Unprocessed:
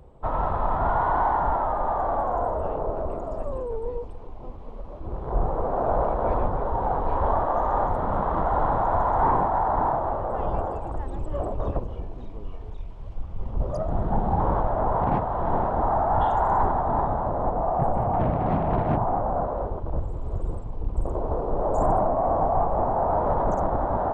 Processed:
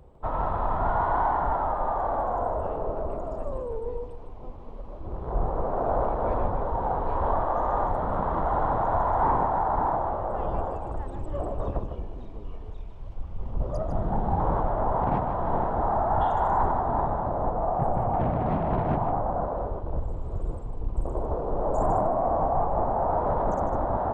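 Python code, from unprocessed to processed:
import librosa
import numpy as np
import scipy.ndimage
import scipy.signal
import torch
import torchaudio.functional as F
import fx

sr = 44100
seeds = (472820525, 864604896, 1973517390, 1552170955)

y = x + 10.0 ** (-9.0 / 20.0) * np.pad(x, (int(153 * sr / 1000.0), 0))[:len(x)]
y = y * 10.0 ** (-2.5 / 20.0)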